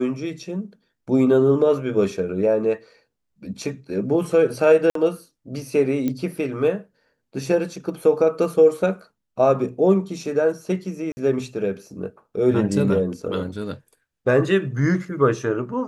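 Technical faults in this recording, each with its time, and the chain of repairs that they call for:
0:04.90–0:04.95: drop-out 53 ms
0:06.08: click −13 dBFS
0:11.12–0:11.17: drop-out 50 ms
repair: click removal
repair the gap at 0:04.90, 53 ms
repair the gap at 0:11.12, 50 ms

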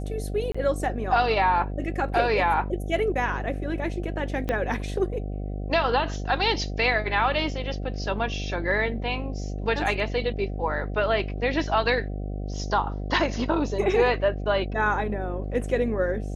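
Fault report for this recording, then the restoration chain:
mains buzz 50 Hz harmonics 15 −31 dBFS
0:00.52–0:00.55: drop-out 25 ms
0:04.49: click −14 dBFS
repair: click removal
hum removal 50 Hz, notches 15
repair the gap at 0:00.52, 25 ms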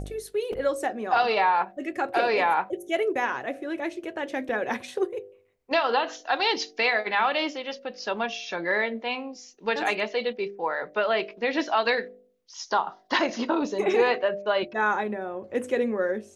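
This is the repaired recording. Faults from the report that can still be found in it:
0:04.49: click

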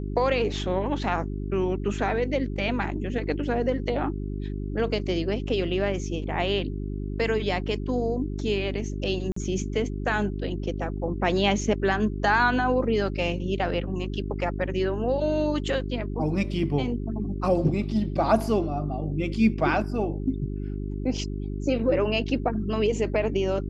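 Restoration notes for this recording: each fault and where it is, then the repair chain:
mains hum 50 Hz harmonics 8 −31 dBFS
0:09.32–0:09.36: drop-out 44 ms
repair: hum removal 50 Hz, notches 8
repair the gap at 0:09.32, 44 ms

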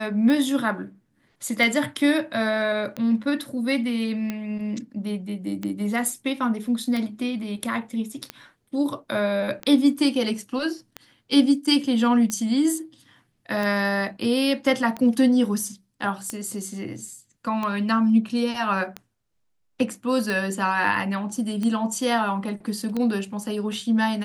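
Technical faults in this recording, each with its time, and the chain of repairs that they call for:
scratch tick 45 rpm −15 dBFS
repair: click removal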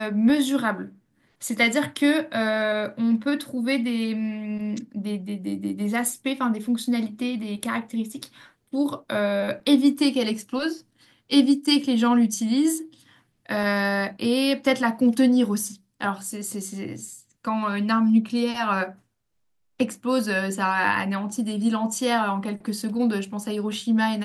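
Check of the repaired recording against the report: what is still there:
none of them is left

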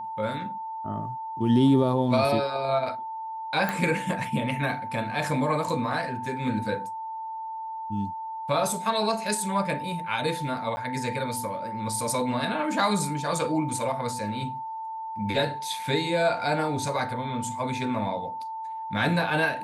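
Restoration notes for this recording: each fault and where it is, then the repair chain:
whistle 890 Hz −32 dBFS
0:03.69: click
0:10.76–0:10.77: drop-out 10 ms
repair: click removal
notch filter 890 Hz, Q 30
repair the gap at 0:10.76, 10 ms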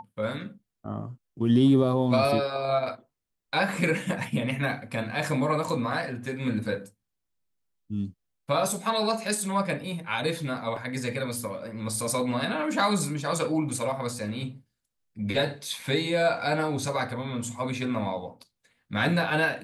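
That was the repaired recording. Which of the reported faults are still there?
none of them is left

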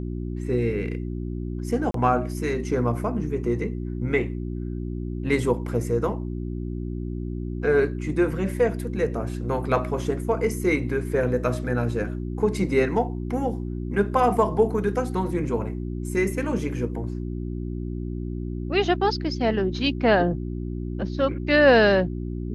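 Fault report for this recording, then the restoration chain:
mains hum 60 Hz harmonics 6 −30 dBFS
0:01.91–0:01.94: drop-out 33 ms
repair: hum removal 60 Hz, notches 6
repair the gap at 0:01.91, 33 ms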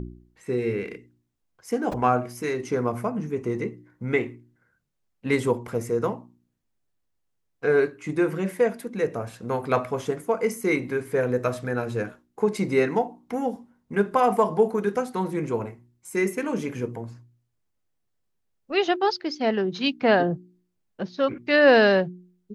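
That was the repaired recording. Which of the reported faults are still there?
none of them is left

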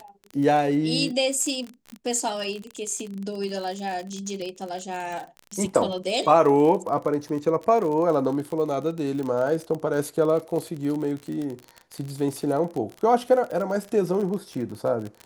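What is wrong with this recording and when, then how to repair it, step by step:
surface crackle 37 per second −29 dBFS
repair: click removal

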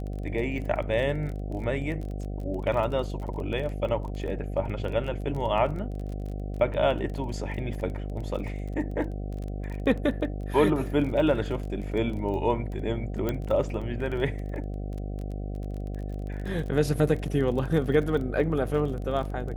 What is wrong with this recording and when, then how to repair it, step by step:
mains buzz 50 Hz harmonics 15 −33 dBFS
surface crackle 24 per second −34 dBFS
0:13.29: click −15 dBFS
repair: click removal
hum removal 50 Hz, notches 15

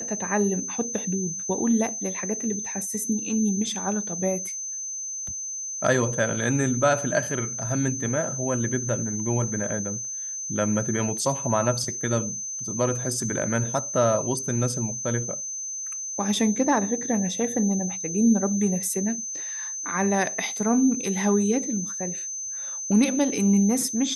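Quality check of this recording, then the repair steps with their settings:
whistle 6,200 Hz −30 dBFS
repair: notch filter 6,200 Hz, Q 30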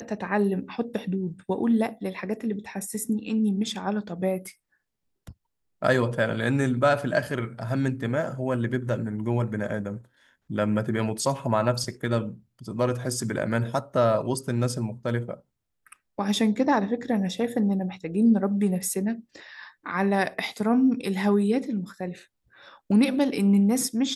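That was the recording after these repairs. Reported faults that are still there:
none of them is left

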